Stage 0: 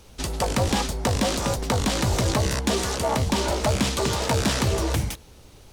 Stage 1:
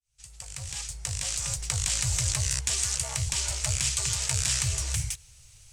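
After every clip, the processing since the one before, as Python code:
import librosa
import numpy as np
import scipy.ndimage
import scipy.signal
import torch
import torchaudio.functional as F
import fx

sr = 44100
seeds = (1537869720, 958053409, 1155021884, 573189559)

y = fx.fade_in_head(x, sr, length_s=1.81)
y = fx.curve_eq(y, sr, hz=(140.0, 220.0, 610.0, 920.0, 2500.0, 3700.0, 8000.0, 14000.0), db=(0, -28, -14, -12, 3, 0, 14, -4))
y = y * 10.0 ** (-5.5 / 20.0)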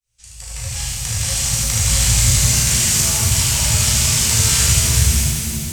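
y = fx.room_early_taps(x, sr, ms=(35, 75), db=(-4.5, -3.0))
y = fx.rev_shimmer(y, sr, seeds[0], rt60_s=3.0, semitones=7, shimmer_db=-8, drr_db=-5.5)
y = y * 10.0 ** (3.0 / 20.0)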